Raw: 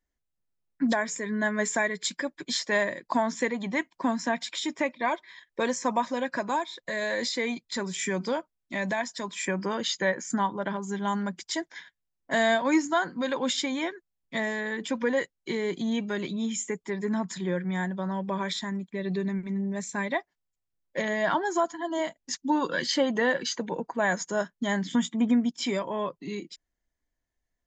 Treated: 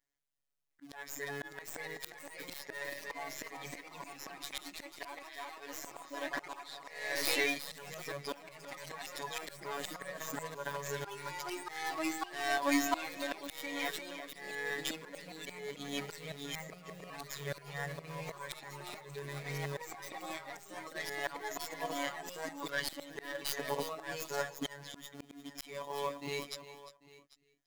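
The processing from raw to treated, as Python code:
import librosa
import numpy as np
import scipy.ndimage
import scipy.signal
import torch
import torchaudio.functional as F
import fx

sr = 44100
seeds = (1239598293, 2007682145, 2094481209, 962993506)

p1 = fx.tracing_dist(x, sr, depth_ms=0.22)
p2 = fx.quant_companded(p1, sr, bits=4)
p3 = p1 + (p2 * librosa.db_to_amplitude(-8.0))
p4 = fx.low_shelf(p3, sr, hz=490.0, db=-10.0)
p5 = p4 + fx.echo_single(p4, sr, ms=795, db=-20.5, dry=0)
p6 = fx.robotise(p5, sr, hz=142.0)
p7 = fx.notch(p6, sr, hz=1300.0, q=30.0)
p8 = p7 + 10.0 ** (-15.0 / 20.0) * np.pad(p7, (int(351 * sr / 1000.0), 0))[:len(p7)]
p9 = fx.auto_swell(p8, sr, attack_ms=637.0)
p10 = fx.echo_pitch(p9, sr, ms=706, semitones=2, count=3, db_per_echo=-6.0)
y = p10 * librosa.db_to_amplitude(1.5)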